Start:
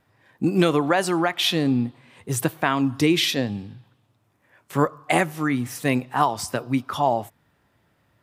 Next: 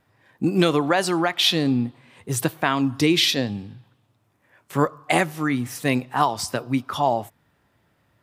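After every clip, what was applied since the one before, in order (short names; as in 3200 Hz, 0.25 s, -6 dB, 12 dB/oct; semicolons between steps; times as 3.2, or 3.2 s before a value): dynamic EQ 4400 Hz, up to +5 dB, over -39 dBFS, Q 1.4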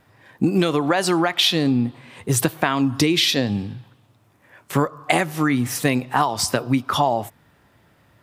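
compressor 6:1, threshold -23 dBFS, peak gain reduction 10 dB; gain +8 dB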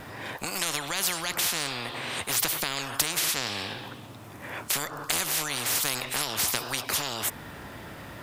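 spectral compressor 10:1; gain -5.5 dB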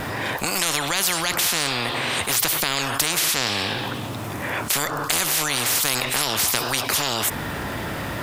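fast leveller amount 50%; gain +3 dB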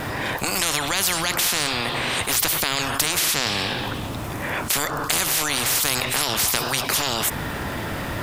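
octaver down 1 oct, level -5 dB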